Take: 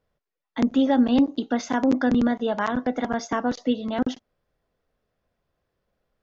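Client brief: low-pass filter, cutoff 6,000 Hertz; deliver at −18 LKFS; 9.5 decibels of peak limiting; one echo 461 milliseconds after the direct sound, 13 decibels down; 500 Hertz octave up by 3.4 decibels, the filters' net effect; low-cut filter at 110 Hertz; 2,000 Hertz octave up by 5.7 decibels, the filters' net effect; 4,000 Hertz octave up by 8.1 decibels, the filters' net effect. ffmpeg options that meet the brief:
ffmpeg -i in.wav -af "highpass=110,lowpass=6000,equalizer=frequency=500:width_type=o:gain=3.5,equalizer=frequency=2000:width_type=o:gain=5.5,equalizer=frequency=4000:width_type=o:gain=9,alimiter=limit=-13dB:level=0:latency=1,aecho=1:1:461:0.224,volume=6dB" out.wav

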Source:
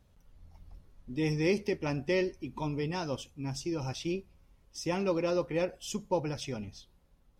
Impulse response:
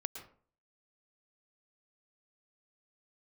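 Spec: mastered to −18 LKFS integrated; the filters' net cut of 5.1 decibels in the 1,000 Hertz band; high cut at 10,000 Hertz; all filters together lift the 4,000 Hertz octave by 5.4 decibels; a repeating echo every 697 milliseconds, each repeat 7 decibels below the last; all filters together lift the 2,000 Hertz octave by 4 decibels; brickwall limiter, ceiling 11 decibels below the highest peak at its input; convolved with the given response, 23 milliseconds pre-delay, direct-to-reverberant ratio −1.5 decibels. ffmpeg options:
-filter_complex "[0:a]lowpass=10000,equalizer=frequency=1000:width_type=o:gain=-7.5,equalizer=frequency=2000:width_type=o:gain=4,equalizer=frequency=4000:width_type=o:gain=7,alimiter=level_in=2dB:limit=-24dB:level=0:latency=1,volume=-2dB,aecho=1:1:697|1394|2091|2788|3485:0.447|0.201|0.0905|0.0407|0.0183,asplit=2[link_01][link_02];[1:a]atrim=start_sample=2205,adelay=23[link_03];[link_02][link_03]afir=irnorm=-1:irlink=0,volume=2.5dB[link_04];[link_01][link_04]amix=inputs=2:normalize=0,volume=14dB"

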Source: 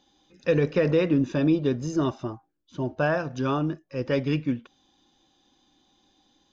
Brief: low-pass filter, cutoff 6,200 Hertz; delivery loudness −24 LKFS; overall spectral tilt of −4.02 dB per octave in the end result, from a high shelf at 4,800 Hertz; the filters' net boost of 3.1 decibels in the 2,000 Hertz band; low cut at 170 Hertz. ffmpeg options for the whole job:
ffmpeg -i in.wav -af "highpass=170,lowpass=6200,equalizer=frequency=2000:width_type=o:gain=5.5,highshelf=frequency=4800:gain=-8.5,volume=2.5dB" out.wav

